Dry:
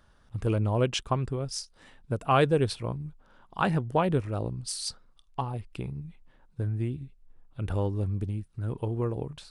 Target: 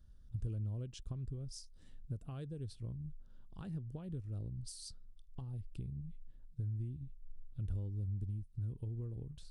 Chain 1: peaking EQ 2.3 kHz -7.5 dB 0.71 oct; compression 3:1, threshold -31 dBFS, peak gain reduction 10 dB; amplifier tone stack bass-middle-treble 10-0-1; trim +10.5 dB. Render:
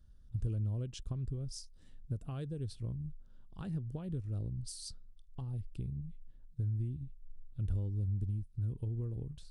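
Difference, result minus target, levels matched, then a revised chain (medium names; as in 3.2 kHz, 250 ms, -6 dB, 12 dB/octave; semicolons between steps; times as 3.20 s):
compression: peak gain reduction -4.5 dB
peaking EQ 2.3 kHz -7.5 dB 0.71 oct; compression 3:1, threshold -37.5 dBFS, peak gain reduction 14.5 dB; amplifier tone stack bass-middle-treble 10-0-1; trim +10.5 dB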